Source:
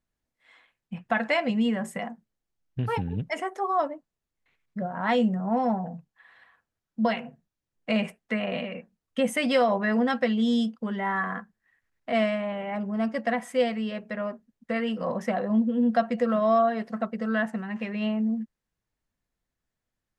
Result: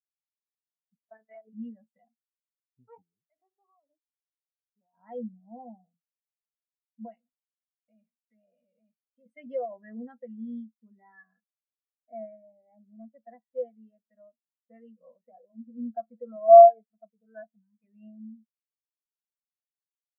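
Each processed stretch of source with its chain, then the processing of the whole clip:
0.95–1.53 s: zero-crossing glitches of -27 dBFS + monotone LPC vocoder at 8 kHz 220 Hz + distance through air 410 m
3.02–4.93 s: compression, threshold -34 dBFS + loudspeaker Doppler distortion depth 0.68 ms
7.17–9.26 s: delay 881 ms -8.5 dB + compression 4:1, threshold -31 dBFS
10.97–12.96 s: low-pass 2.4 kHz 24 dB/octave + peaking EQ 1.1 kHz -6.5 dB 0.42 oct
15.15–15.71 s: distance through air 210 m + band-stop 210 Hz, Q 6.5
16.48–17.84 s: rippled EQ curve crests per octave 1.7, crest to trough 11 dB + three bands expanded up and down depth 70%
whole clip: high-pass 200 Hz; spectral contrast expander 2.5:1; trim +4 dB

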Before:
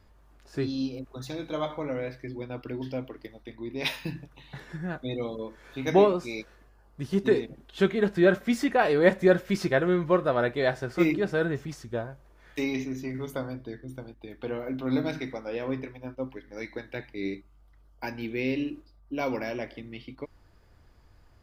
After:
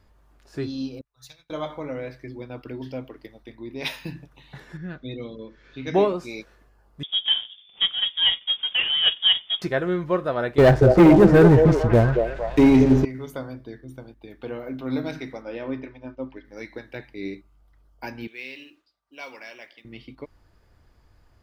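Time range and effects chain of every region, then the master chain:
1.01–1.50 s: amplifier tone stack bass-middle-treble 10-0-10 + comb 6.9 ms, depth 41% + upward expansion 2.5:1, over -59 dBFS
4.77–5.94 s: low-pass 5.3 kHz 24 dB/octave + peaking EQ 810 Hz -11 dB 1.1 oct
7.03–9.62 s: median filter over 25 samples + doubling 16 ms -12.5 dB + frequency inversion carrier 3.5 kHz
10.58–13.05 s: tilt EQ -3.5 dB/octave + waveshaping leveller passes 3 + repeats whose band climbs or falls 228 ms, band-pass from 500 Hz, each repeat 0.7 oct, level -2 dB
15.42–16.45 s: low-pass 4.7 kHz + comb 3.3 ms, depth 35%
18.27–19.85 s: band-pass filter 3.4 kHz, Q 0.7 + modulation noise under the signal 30 dB
whole clip: none

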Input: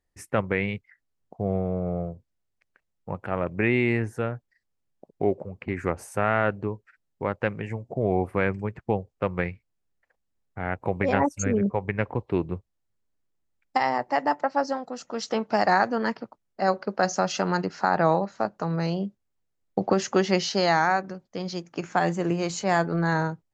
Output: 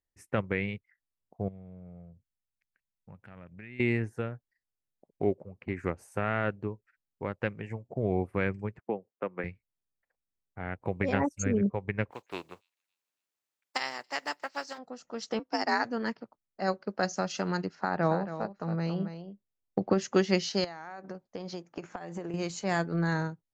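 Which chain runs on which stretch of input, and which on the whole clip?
1.48–3.80 s: high-order bell 610 Hz -9 dB 2.3 oct + compression 3:1, threshold -37 dBFS
8.80–9.44 s: high-pass 130 Hz + three-band isolator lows -20 dB, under 190 Hz, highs -21 dB, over 2.6 kHz
12.10–14.77 s: spectral contrast reduction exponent 0.67 + high-pass 850 Hz 6 dB/octave + feedback echo behind a high-pass 279 ms, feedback 37%, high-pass 3.5 kHz, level -23 dB
15.39–15.85 s: peaking EQ 5.3 kHz +10 dB 0.28 oct + frequency shift +58 Hz + upward expansion, over -38 dBFS
17.75–20.01 s: treble shelf 5.1 kHz -11 dB + delay 275 ms -8 dB
20.64–22.34 s: peaking EQ 680 Hz +7 dB 2.6 oct + compression 16:1, threshold -26 dBFS
whole clip: dynamic bell 850 Hz, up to -6 dB, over -34 dBFS, Q 0.83; upward expansion 1.5:1, over -43 dBFS

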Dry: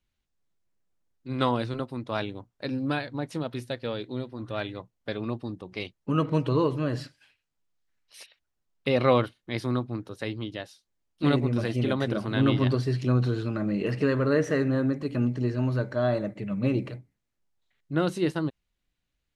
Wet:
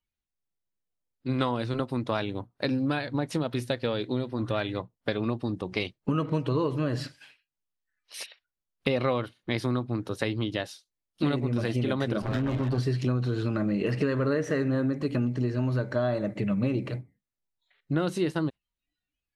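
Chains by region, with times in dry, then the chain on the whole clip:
12.22–12.78 s: comb filter that takes the minimum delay 7.6 ms + treble shelf 3.8 kHz -9 dB + compression 5:1, threshold -27 dBFS
whole clip: spectral noise reduction 19 dB; compression 5:1, threshold -33 dBFS; trim +8.5 dB

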